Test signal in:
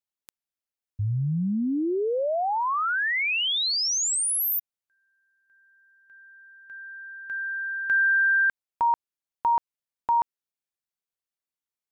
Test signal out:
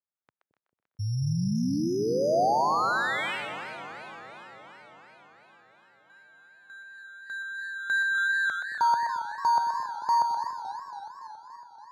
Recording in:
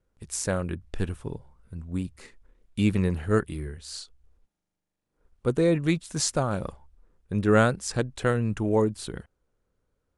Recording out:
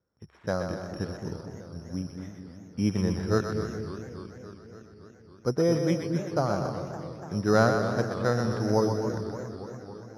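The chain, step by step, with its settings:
bad sample-rate conversion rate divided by 8×, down filtered, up zero stuff
dynamic equaliser 700 Hz, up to +5 dB, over −40 dBFS, Q 2.2
Chebyshev band-pass filter 110–1,500 Hz, order 2
on a send: echo with a time of its own for lows and highs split 460 Hz, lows 220 ms, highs 125 ms, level −6 dB
on the sum: feedback echo with a swinging delay time 282 ms, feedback 72%, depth 192 cents, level −13 dB
level −2.5 dB

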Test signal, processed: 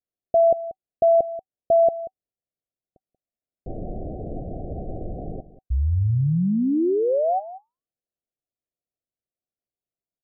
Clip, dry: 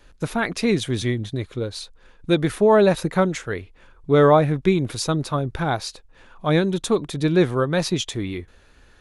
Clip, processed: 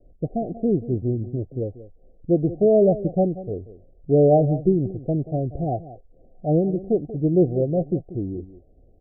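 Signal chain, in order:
Chebyshev low-pass filter 760 Hz, order 10
single-tap delay 185 ms −15.5 dB

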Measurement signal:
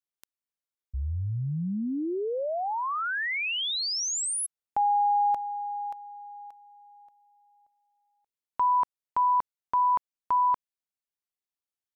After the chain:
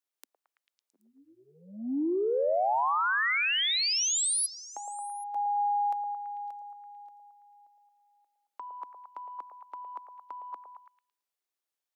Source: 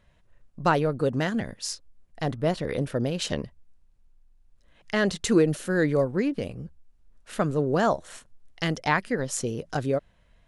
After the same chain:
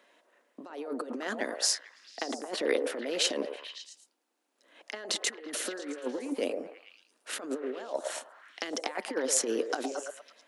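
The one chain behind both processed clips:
compressor whose output falls as the input rises −30 dBFS, ratio −0.5
Butterworth high-pass 260 Hz 48 dB per octave
on a send: echo through a band-pass that steps 111 ms, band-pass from 610 Hz, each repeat 0.7 octaves, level −3.5 dB

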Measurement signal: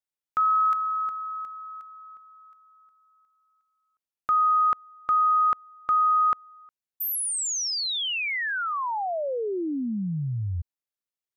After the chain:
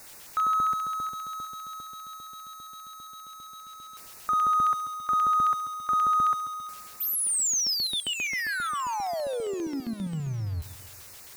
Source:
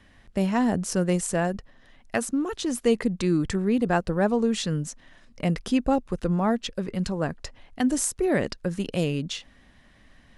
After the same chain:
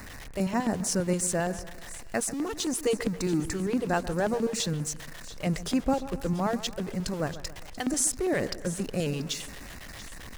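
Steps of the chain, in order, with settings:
converter with a step at zero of −33.5 dBFS
dynamic equaliser 6,800 Hz, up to +5 dB, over −44 dBFS, Q 0.71
auto-filter notch square 7.5 Hz 230–3,200 Hz
on a send: echo with a time of its own for lows and highs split 2,900 Hz, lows 136 ms, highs 686 ms, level −15 dB
on the sum: level −4 dB

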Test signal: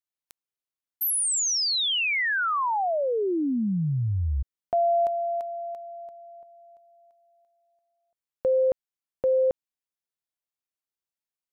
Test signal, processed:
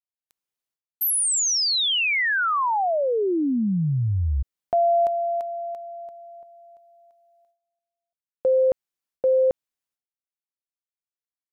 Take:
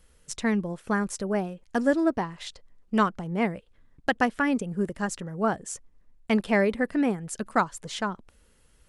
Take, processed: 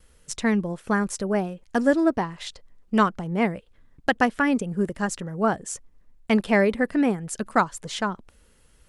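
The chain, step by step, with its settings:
noise gate with hold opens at −54 dBFS, closes at −58 dBFS, hold 379 ms, range −16 dB
level +3 dB

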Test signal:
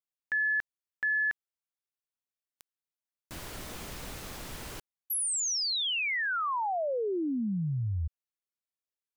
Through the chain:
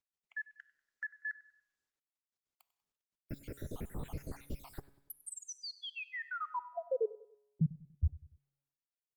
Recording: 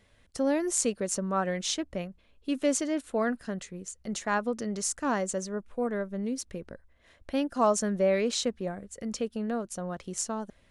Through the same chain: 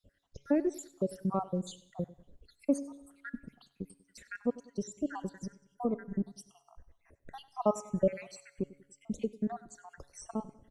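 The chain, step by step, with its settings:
time-frequency cells dropped at random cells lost 73%
high-shelf EQ 9,600 Hz +7.5 dB
in parallel at −2 dB: downward compressor 20 to 1, threshold −43 dBFS
on the sum: tilt shelving filter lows +9 dB
tuned comb filter 140 Hz, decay 0.97 s, harmonics all, mix 50%
repeating echo 96 ms, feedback 43%, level −19 dB
Opus 20 kbit/s 48,000 Hz

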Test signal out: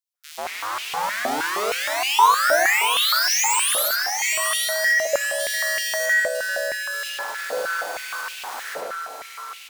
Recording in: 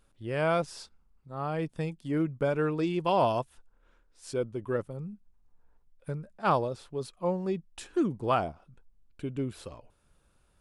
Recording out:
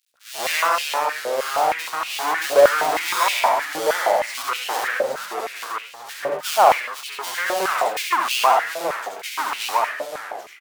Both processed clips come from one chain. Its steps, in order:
each half-wave held at its own peak
on a send: ambience of single reflections 67 ms −4.5 dB, 79 ms −7 dB
on the sum: delay with pitch and tempo change per echo 292 ms, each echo −2 semitones, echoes 3, each echo −6 dB
in parallel at +1 dB: brickwall limiter −18.5 dBFS
on the sum: multiband delay without the direct sound highs, lows 140 ms, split 2,600 Hz
high-pass on a step sequencer 6.4 Hz 570–2,700 Hz
level −2.5 dB

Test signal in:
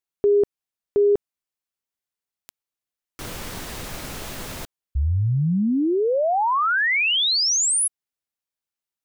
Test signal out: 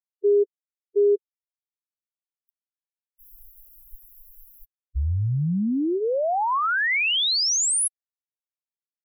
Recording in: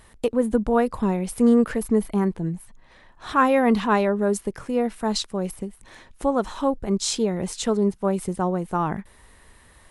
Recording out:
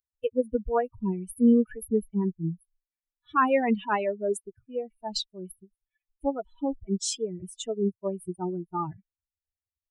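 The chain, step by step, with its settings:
spectral dynamics exaggerated over time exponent 3

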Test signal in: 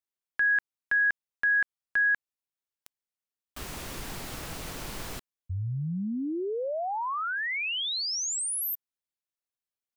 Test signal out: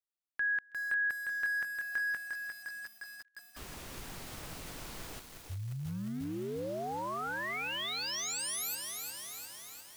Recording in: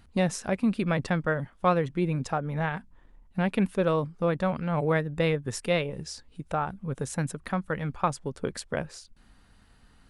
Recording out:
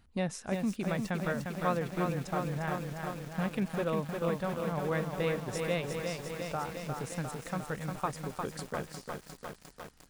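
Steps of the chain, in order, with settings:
delay with a high-pass on its return 162 ms, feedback 82%, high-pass 3,600 Hz, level −15 dB
feedback echo at a low word length 353 ms, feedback 80%, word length 7 bits, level −4.5 dB
level −7.5 dB

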